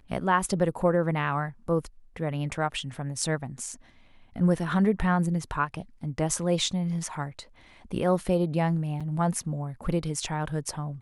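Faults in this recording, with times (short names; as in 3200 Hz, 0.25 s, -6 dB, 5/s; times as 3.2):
9–9.01 gap 5.9 ms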